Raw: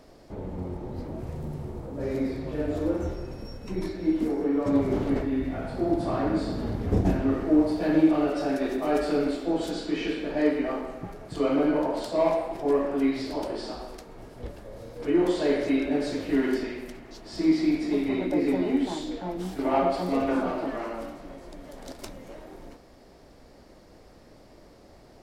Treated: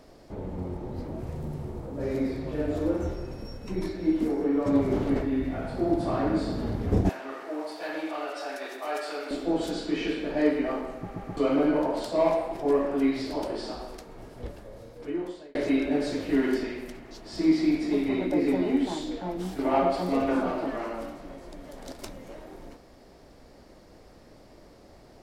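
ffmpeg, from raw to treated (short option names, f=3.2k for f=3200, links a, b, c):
-filter_complex "[0:a]asettb=1/sr,asplit=3[a][b][c];[a]atrim=end=7.094[d];[b]atrim=start=7.09:end=9.31,asetpts=PTS-STARTPTS,afade=t=in:d=0.004:c=qsin,afade=t=out:st=2.216:d=0.004:c=qsin,highpass=780[e];[c]atrim=start=9.306[f];[d][e]acrossfade=d=0.004:c1=hsin:c2=qsin[g];[g][f]acrossfade=d=0.004:c1=qsin:c2=hsin,asplit=5[h][i][j][k][l];[h]atrim=end=11.112[m];[i]atrim=start=10.978:end=11.112[n];[j]atrim=start=10.978:end=11.112[o];[k]atrim=start=11.368:end=15.55,asetpts=PTS-STARTPTS,afade=t=out:st=3.092:d=1.09[p];[l]atrim=start=15.55,asetpts=PTS-STARTPTS,afade=t=in:d=0.004:c=hsin[q];[m][n]acrossfade=d=0.004:c1=hsin:c2=hsin[r];[r][o]acrossfade=d=0.004:c1=hsin:c2=hsin[s];[p][q]concat=n=2:v=0:a=1[t];[s][t]acrossfade=d=0.004:c1=hsin:c2=hsin"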